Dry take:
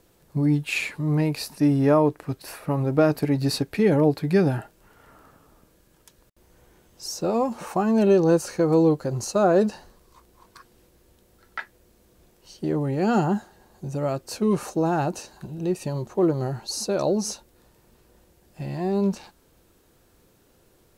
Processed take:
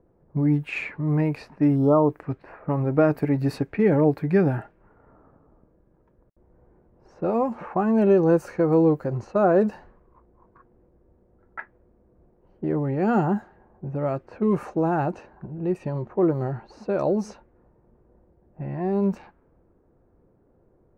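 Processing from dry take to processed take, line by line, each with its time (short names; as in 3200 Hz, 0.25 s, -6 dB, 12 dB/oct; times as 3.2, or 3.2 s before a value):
1.76–2.1 spectral delete 1400–2900 Hz
whole clip: low-pass opened by the level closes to 760 Hz, open at -19.5 dBFS; band shelf 6300 Hz -15 dB 2.3 oct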